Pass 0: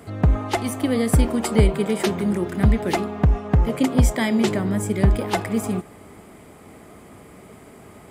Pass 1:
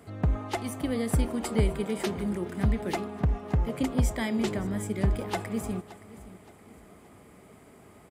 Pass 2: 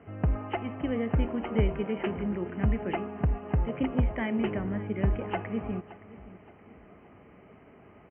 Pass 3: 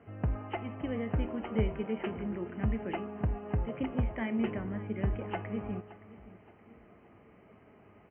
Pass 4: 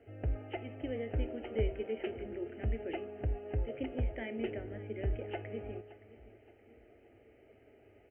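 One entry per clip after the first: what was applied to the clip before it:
feedback delay 571 ms, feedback 40%, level -18 dB; trim -8.5 dB
Chebyshev low-pass 3 kHz, order 8
flange 0.44 Hz, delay 8.6 ms, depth 1.1 ms, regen +75%
static phaser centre 440 Hz, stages 4

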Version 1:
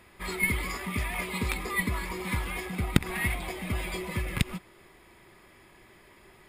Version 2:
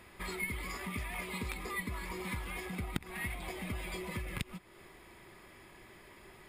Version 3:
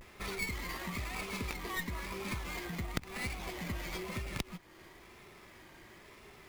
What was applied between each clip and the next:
compression 2.5:1, threshold -40 dBFS, peak gain reduction 17 dB
treble shelf 5.7 kHz +9.5 dB; vibrato 1 Hz 99 cents; sliding maximum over 5 samples

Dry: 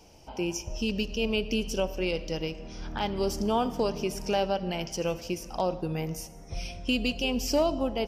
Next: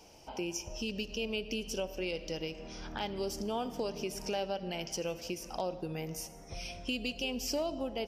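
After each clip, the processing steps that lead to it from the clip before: dynamic bell 1.1 kHz, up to -5 dB, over -45 dBFS, Q 1.6; compression 2:1, threshold -34 dBFS, peak gain reduction 7.5 dB; bass shelf 210 Hz -8 dB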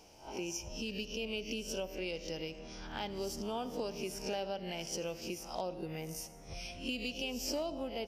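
reverse spectral sustain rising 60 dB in 0.36 s; trim -3.5 dB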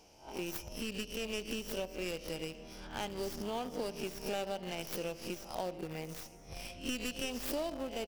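tracing distortion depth 0.23 ms; in parallel at -11 dB: word length cut 6-bit, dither none; on the sum: delay 1024 ms -22.5 dB; trim -2 dB

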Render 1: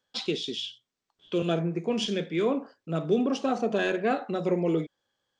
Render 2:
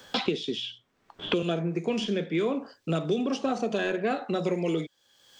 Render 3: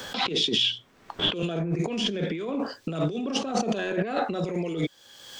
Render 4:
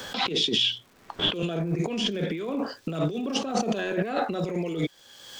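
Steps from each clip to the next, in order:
three bands compressed up and down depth 100%; trim -1.5 dB
compressor with a negative ratio -35 dBFS, ratio -1; trim +7 dB
crackle 230 per s -46 dBFS

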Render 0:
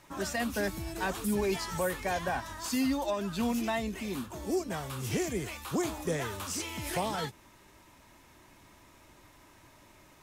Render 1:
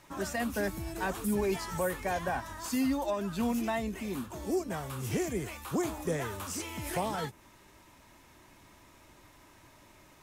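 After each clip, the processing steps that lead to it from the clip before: dynamic bell 4.1 kHz, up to -5 dB, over -51 dBFS, Q 0.83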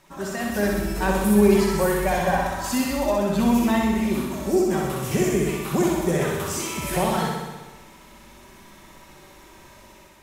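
level rider gain up to 6.5 dB; flutter echo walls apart 10.8 m, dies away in 1.2 s; reverberation RT60 0.65 s, pre-delay 5 ms, DRR 7.5 dB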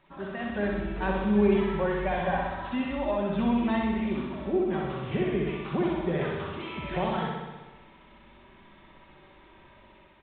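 resampled via 8 kHz; trim -6 dB

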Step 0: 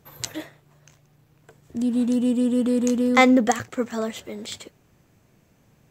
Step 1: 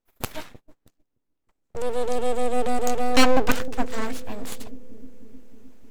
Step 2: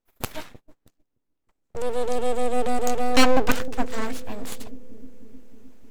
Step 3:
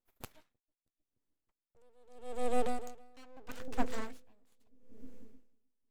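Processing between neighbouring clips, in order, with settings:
full-wave rectifier; bucket-brigade echo 308 ms, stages 1024, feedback 71%, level -13 dB; gate -42 dBFS, range -26 dB; trim +1.5 dB
no audible change
logarithmic tremolo 0.78 Hz, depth 33 dB; trim -7 dB

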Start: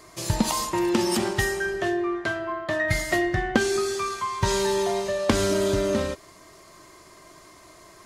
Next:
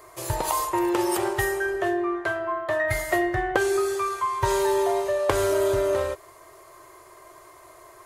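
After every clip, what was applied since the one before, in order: FFT filter 130 Hz 0 dB, 220 Hz -24 dB, 360 Hz +5 dB, 1 kHz +7 dB, 5.3 kHz -5 dB, 13 kHz +9 dB; trim -3.5 dB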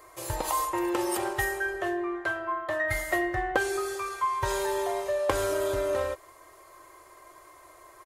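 comb 3.8 ms, depth 37%; trim -4 dB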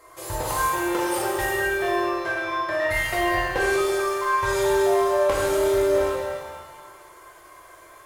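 one-sided clip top -22.5 dBFS; pitch-shifted reverb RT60 1.5 s, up +7 st, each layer -8 dB, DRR -3.5 dB; trim -1 dB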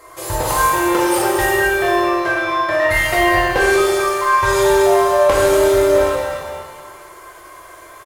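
delay 238 ms -13 dB; trim +8 dB

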